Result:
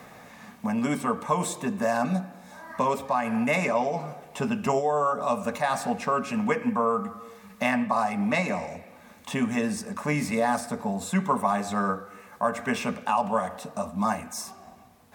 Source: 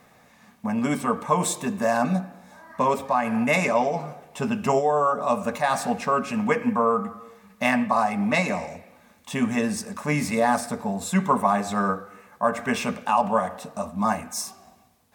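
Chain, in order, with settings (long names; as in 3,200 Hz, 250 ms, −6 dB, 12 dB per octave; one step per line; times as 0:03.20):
multiband upward and downward compressor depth 40%
level −3 dB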